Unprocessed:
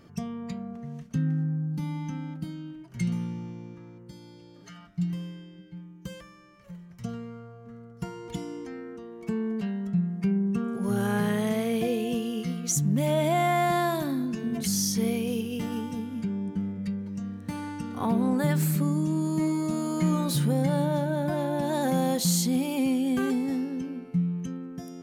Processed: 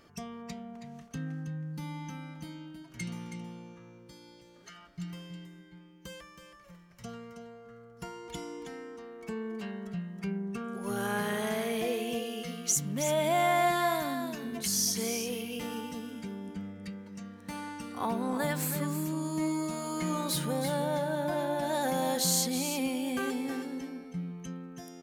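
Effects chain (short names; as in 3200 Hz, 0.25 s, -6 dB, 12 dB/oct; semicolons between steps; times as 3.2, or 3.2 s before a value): bell 140 Hz -12 dB 2.5 oct; on a send: echo 0.322 s -9 dB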